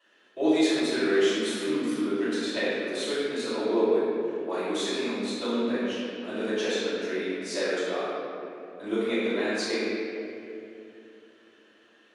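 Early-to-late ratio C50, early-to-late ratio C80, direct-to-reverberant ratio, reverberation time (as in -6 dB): -4.5 dB, -2.0 dB, -14.5 dB, 2.8 s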